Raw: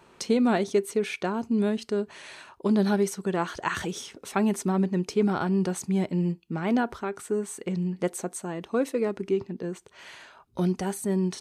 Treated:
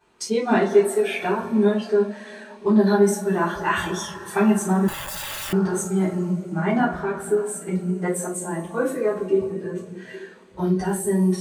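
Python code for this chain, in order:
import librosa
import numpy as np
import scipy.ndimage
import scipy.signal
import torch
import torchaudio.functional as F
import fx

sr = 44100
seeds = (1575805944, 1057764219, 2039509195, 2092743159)

y = fx.rev_double_slope(x, sr, seeds[0], early_s=0.33, late_s=4.9, knee_db=-19, drr_db=-10.0)
y = fx.overflow_wrap(y, sr, gain_db=21.5, at=(4.88, 5.53))
y = fx.noise_reduce_blind(y, sr, reduce_db=11)
y = F.gain(torch.from_numpy(y), -3.5).numpy()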